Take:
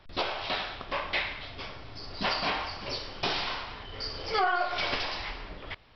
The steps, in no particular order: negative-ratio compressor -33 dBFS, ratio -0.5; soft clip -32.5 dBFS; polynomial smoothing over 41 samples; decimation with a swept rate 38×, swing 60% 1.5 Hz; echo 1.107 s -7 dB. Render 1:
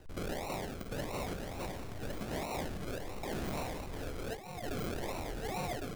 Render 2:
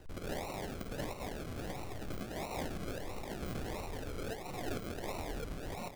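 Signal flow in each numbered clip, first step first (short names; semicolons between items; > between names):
polynomial smoothing > decimation with a swept rate > echo > negative-ratio compressor > soft clip; negative-ratio compressor > echo > soft clip > polynomial smoothing > decimation with a swept rate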